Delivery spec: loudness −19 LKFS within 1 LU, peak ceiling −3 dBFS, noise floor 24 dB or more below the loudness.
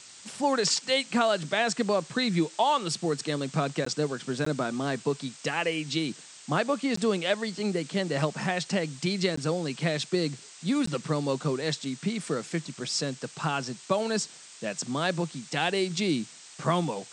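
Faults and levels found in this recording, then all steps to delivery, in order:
number of dropouts 5; longest dropout 14 ms; background noise floor −49 dBFS; target noise floor −53 dBFS; integrated loudness −28.5 LKFS; sample peak −10.5 dBFS; target loudness −19.0 LKFS
→ repair the gap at 0:03.85/0:04.45/0:06.96/0:09.36/0:10.86, 14 ms
noise reduction from a noise print 6 dB
level +9.5 dB
brickwall limiter −3 dBFS

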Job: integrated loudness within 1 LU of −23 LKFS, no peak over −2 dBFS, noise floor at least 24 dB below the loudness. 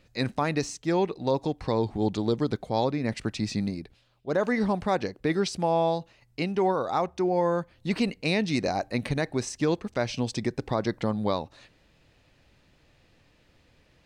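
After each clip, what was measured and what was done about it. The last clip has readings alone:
integrated loudness −28.0 LKFS; sample peak −14.5 dBFS; target loudness −23.0 LKFS
→ level +5 dB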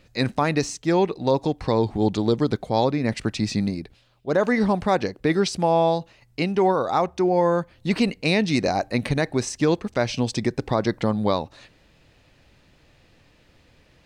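integrated loudness −23.0 LKFS; sample peak −9.5 dBFS; background noise floor −58 dBFS

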